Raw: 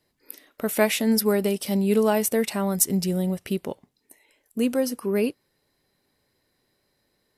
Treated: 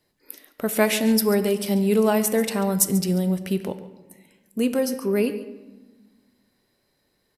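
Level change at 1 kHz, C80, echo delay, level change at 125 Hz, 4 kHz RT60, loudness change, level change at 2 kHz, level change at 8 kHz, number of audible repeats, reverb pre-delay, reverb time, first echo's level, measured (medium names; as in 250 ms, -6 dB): +1.5 dB, 12.5 dB, 140 ms, +2.5 dB, 0.80 s, +1.5 dB, +1.5 dB, +1.0 dB, 1, 4 ms, 1.3 s, -16.0 dB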